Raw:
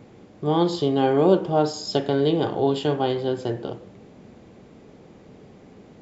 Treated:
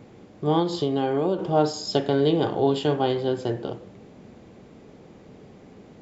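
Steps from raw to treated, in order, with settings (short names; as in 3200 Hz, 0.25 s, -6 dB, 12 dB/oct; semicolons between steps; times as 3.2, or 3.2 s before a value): 0.59–1.39 compressor 6:1, threshold -20 dBFS, peak gain reduction 9 dB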